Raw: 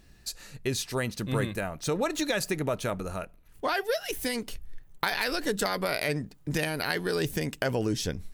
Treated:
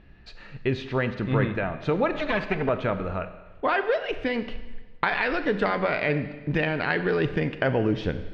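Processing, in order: 2.12–2.69 minimum comb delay 4.6 ms; LPF 2900 Hz 24 dB/oct; Schroeder reverb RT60 1.2 s, combs from 30 ms, DRR 10 dB; gain +4.5 dB

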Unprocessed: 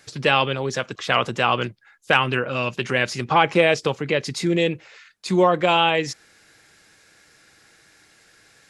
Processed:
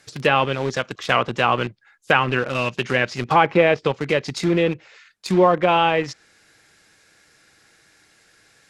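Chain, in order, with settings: in parallel at -7 dB: bit-crush 4-bit; on the sum: treble ducked by the level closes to 2300 Hz, closed at -12 dBFS; gain -1.5 dB

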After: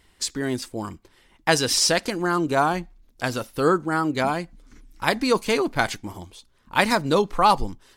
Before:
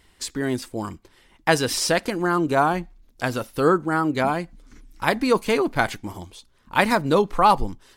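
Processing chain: dynamic EQ 5700 Hz, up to +7 dB, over -41 dBFS, Q 0.78; gain -1.5 dB

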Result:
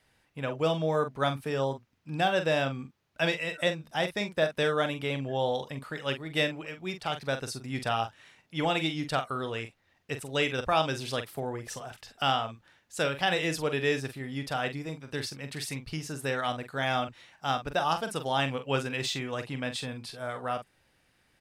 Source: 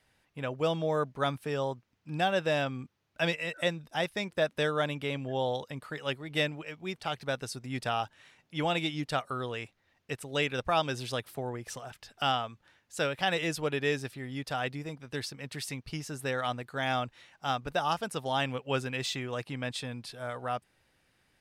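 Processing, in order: doubler 44 ms -9 dB; gain +1.5 dB

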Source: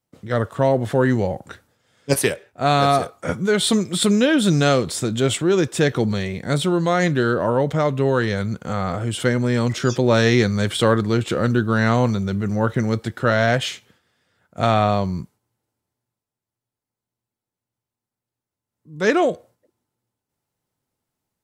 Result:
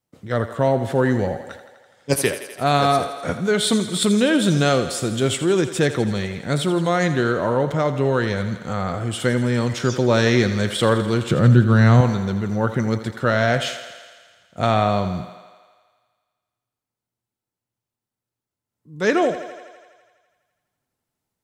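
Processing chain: 11.28–12.01 bell 140 Hz +14 dB 0.87 oct; on a send: thinning echo 83 ms, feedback 73%, high-pass 260 Hz, level -12 dB; on the sum: gain -1 dB

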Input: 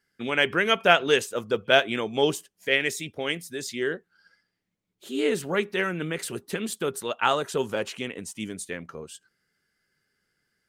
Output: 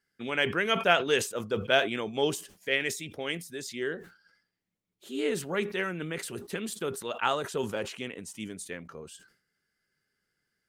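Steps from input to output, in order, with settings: sustainer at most 120 dB/s; gain -5 dB

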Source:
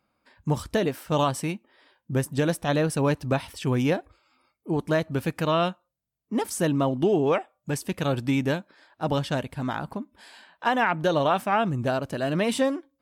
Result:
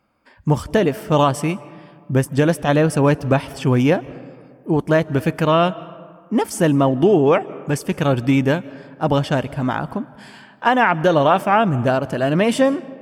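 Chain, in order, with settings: high shelf 4200 Hz -5.5 dB; notch 3900 Hz, Q 7.2; reverb RT60 2.0 s, pre-delay 0.11 s, DRR 19 dB; gain +8 dB

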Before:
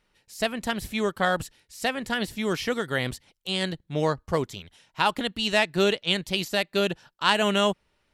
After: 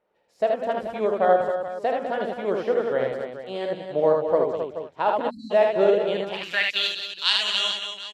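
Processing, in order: tapped delay 47/77/199/267/429/757 ms -9.5/-3/-9.5/-8/-12/-19.5 dB; spectral delete 5.3–5.51, 290–3900 Hz; band-pass sweep 580 Hz -> 4100 Hz, 6.19–6.87; gain +7.5 dB

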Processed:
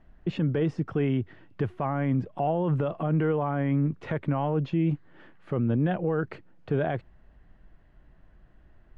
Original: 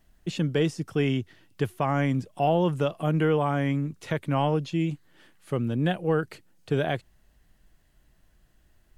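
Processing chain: LPF 1700 Hz 12 dB/oct; limiter -24.5 dBFS, peak gain reduction 11.5 dB; gain +6.5 dB

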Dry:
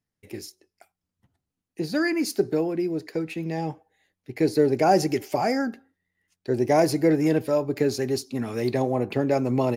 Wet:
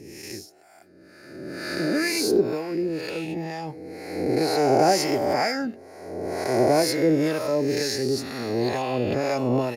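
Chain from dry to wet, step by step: spectral swells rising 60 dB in 1.77 s; harmonic tremolo 2.1 Hz, depth 70%, crossover 690 Hz; dynamic EQ 4100 Hz, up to +5 dB, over -46 dBFS, Q 1.7

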